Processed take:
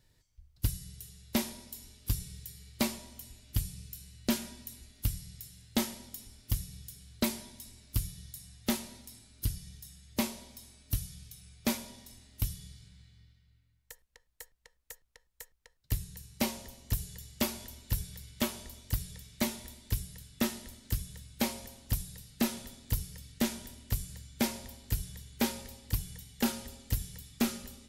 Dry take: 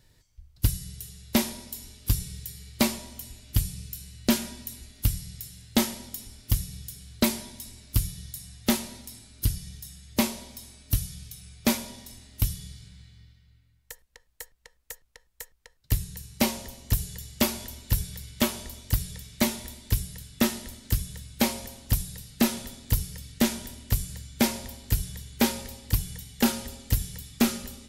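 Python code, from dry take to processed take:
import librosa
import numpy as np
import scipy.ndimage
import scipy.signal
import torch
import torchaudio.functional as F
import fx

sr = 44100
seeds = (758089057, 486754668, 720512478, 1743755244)

y = x * 10.0 ** (-7.0 / 20.0)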